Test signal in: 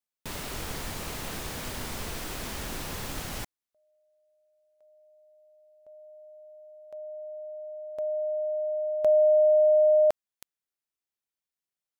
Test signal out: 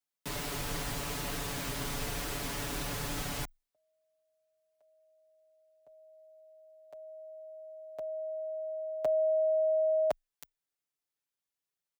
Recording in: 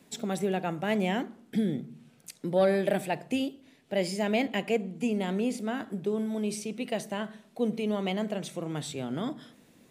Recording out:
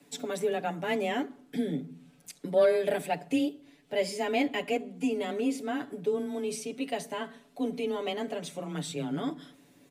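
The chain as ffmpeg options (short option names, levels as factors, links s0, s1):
-af "afreqshift=18,aecho=1:1:7:0.91,volume=0.708"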